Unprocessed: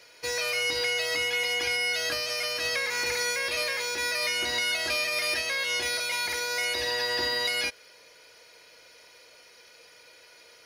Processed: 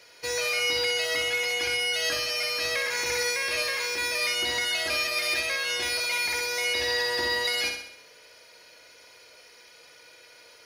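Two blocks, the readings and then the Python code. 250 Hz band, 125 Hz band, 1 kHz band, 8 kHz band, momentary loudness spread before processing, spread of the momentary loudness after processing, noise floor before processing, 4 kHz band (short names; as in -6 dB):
+1.0 dB, +0.5 dB, +0.5 dB, +1.5 dB, 2 LU, 2 LU, -54 dBFS, +1.5 dB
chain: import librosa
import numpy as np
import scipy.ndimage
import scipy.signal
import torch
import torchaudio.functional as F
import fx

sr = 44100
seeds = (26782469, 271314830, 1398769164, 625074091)

y = fx.room_flutter(x, sr, wall_m=10.9, rt60_s=0.68)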